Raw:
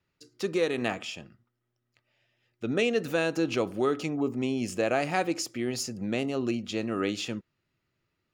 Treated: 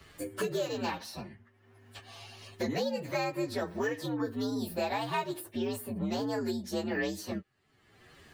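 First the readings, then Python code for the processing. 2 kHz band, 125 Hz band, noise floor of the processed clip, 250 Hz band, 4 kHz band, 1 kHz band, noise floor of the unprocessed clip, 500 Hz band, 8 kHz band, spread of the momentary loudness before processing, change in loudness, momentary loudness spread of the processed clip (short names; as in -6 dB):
-5.0 dB, -3.0 dB, -66 dBFS, -4.5 dB, -4.0 dB, -1.5 dB, -80 dBFS, -5.0 dB, -6.5 dB, 9 LU, -4.5 dB, 15 LU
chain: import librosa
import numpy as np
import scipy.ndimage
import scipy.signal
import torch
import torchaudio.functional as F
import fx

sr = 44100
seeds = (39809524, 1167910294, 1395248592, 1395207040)

y = fx.partial_stretch(x, sr, pct=121)
y = fx.peak_eq(y, sr, hz=1400.0, db=8.0, octaves=1.7)
y = fx.band_squash(y, sr, depth_pct=100)
y = F.gain(torch.from_numpy(y), -4.5).numpy()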